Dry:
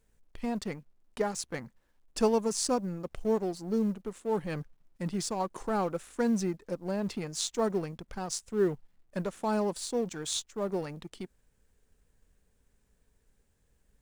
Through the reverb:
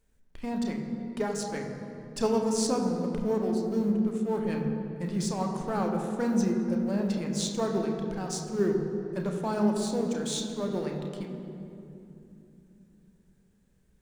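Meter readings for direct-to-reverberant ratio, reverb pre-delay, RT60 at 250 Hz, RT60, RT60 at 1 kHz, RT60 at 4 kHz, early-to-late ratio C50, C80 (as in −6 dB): 1.5 dB, 3 ms, 4.7 s, 2.9 s, 2.6 s, 1.7 s, 4.0 dB, 5.0 dB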